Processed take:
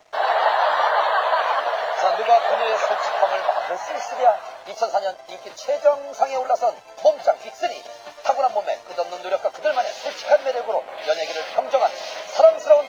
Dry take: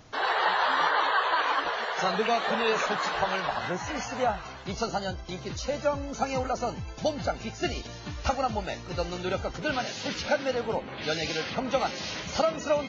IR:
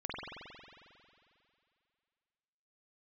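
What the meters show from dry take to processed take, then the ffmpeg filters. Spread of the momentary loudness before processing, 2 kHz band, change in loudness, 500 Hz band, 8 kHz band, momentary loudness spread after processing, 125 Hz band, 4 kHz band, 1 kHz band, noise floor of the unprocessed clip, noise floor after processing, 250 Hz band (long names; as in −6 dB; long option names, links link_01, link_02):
9 LU, +2.0 dB, +7.5 dB, +10.5 dB, can't be measured, 11 LU, below −20 dB, +1.0 dB, +8.0 dB, −42 dBFS, −42 dBFS, −12.0 dB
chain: -af "highpass=frequency=640:width_type=q:width=4.9,aeval=exprs='sgn(val(0))*max(abs(val(0))-0.00266,0)':channel_layout=same,volume=1dB"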